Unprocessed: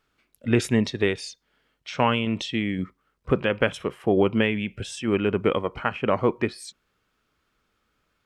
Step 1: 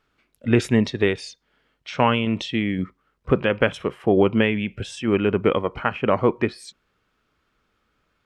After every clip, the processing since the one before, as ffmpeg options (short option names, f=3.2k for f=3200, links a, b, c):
-af "highshelf=f=6.3k:g=-9,volume=3dB"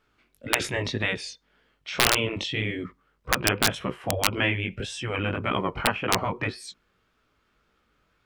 -af "flanger=delay=15.5:depth=6.4:speed=1.8,aeval=exprs='(mod(2.99*val(0)+1,2)-1)/2.99':c=same,afftfilt=real='re*lt(hypot(re,im),0.282)':imag='im*lt(hypot(re,im),0.282)':win_size=1024:overlap=0.75,volume=3.5dB"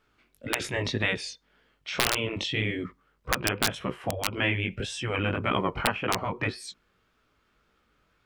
-af "alimiter=limit=-8.5dB:level=0:latency=1:release=340"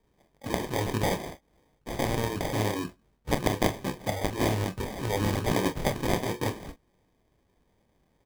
-af "acrusher=samples=32:mix=1:aa=0.000001,aecho=1:1:28|42:0.282|0.188"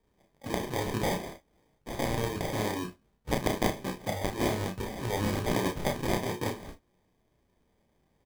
-filter_complex "[0:a]asplit=2[a][b];[b]adelay=33,volume=-6dB[c];[a][c]amix=inputs=2:normalize=0,volume=-3dB"